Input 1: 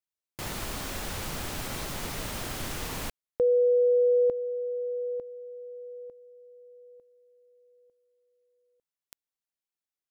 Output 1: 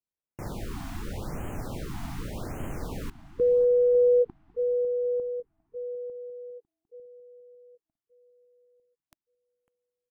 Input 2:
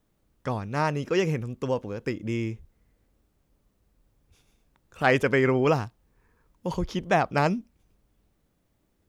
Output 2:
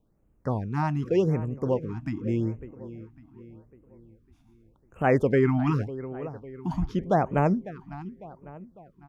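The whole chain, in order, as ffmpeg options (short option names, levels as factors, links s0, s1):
-filter_complex "[0:a]tiltshelf=f=1300:g=7.5,asplit=2[s0][s1];[s1]adelay=551,lowpass=f=3900:p=1,volume=0.178,asplit=2[s2][s3];[s3]adelay=551,lowpass=f=3900:p=1,volume=0.49,asplit=2[s4][s5];[s5]adelay=551,lowpass=f=3900:p=1,volume=0.49,asplit=2[s6][s7];[s7]adelay=551,lowpass=f=3900:p=1,volume=0.49,asplit=2[s8][s9];[s9]adelay=551,lowpass=f=3900:p=1,volume=0.49[s10];[s2][s4][s6][s8][s10]amix=inputs=5:normalize=0[s11];[s0][s11]amix=inputs=2:normalize=0,afftfilt=real='re*(1-between(b*sr/1024,440*pow(4600/440,0.5+0.5*sin(2*PI*0.85*pts/sr))/1.41,440*pow(4600/440,0.5+0.5*sin(2*PI*0.85*pts/sr))*1.41))':imag='im*(1-between(b*sr/1024,440*pow(4600/440,0.5+0.5*sin(2*PI*0.85*pts/sr))/1.41,440*pow(4600/440,0.5+0.5*sin(2*PI*0.85*pts/sr))*1.41))':win_size=1024:overlap=0.75,volume=0.596"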